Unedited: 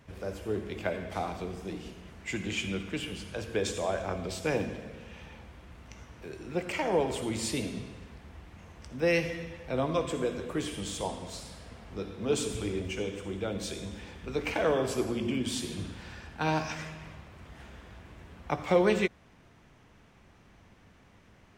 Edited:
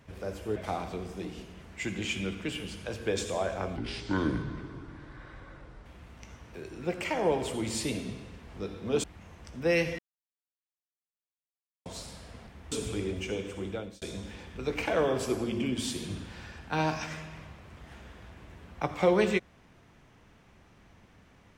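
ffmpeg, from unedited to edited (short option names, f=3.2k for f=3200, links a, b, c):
-filter_complex "[0:a]asplit=11[a][b][c][d][e][f][g][h][i][j][k];[a]atrim=end=0.562[l];[b]atrim=start=1.038:end=4.244[m];[c]atrim=start=4.24:end=5.54,asetpts=PTS-STARTPTS,asetrate=27342,aresample=44100[n];[d]atrim=start=5.536:end=8.162[o];[e]atrim=start=11.838:end=12.402[p];[f]atrim=start=8.408:end=9.36,asetpts=PTS-STARTPTS,afade=t=out:st=0.948:d=0.004:c=hsin[q];[g]atrim=start=9.36:end=11.23,asetpts=PTS-STARTPTS,volume=0[r];[h]atrim=start=11.23:end=11.842,asetpts=PTS-STARTPTS,afade=t=in:d=0.004:c=hsin[s];[i]atrim=start=8.158:end=8.412[t];[j]atrim=start=12.398:end=13.7,asetpts=PTS-STARTPTS,afade=t=out:st=0.962:d=0.34[u];[k]atrim=start=13.7,asetpts=PTS-STARTPTS,afade=t=in:d=0.004:c=hsin[v];[l][m]acrossfade=d=0.004:c1=hsin:c2=hsin[w];[w][n]acrossfade=d=0.004:c1=hsin:c2=hsin[x];[x][o]acrossfade=d=0.004:c1=hsin:c2=hsin[y];[y][p]acrossfade=d=0.004:c1=hsin:c2=hsin[z];[q][r][s]concat=n=3:v=0:a=1[aa];[z][aa]acrossfade=d=0.004:c1=hsin:c2=hsin[ab];[ab][t]acrossfade=d=0.004:c1=hsin:c2=hsin[ac];[u][v]concat=n=2:v=0:a=1[ad];[ac][ad]acrossfade=d=0.004:c1=hsin:c2=hsin"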